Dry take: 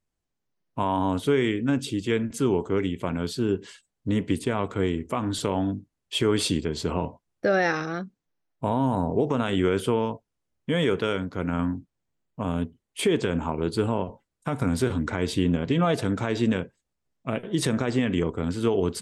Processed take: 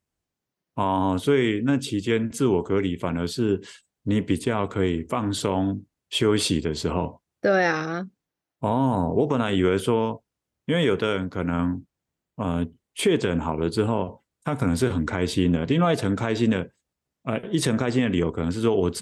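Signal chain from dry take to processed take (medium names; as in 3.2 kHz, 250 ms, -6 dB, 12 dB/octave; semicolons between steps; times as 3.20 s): high-pass 41 Hz; trim +2 dB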